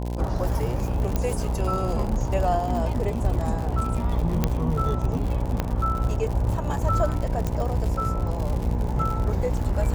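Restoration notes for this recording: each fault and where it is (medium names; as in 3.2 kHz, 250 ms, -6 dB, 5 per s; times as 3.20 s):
buzz 60 Hz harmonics 17 -28 dBFS
crackle 96 per s -29 dBFS
1.16 s: pop -11 dBFS
4.44 s: pop -8 dBFS
5.60 s: pop -11 dBFS
7.47 s: pop -14 dBFS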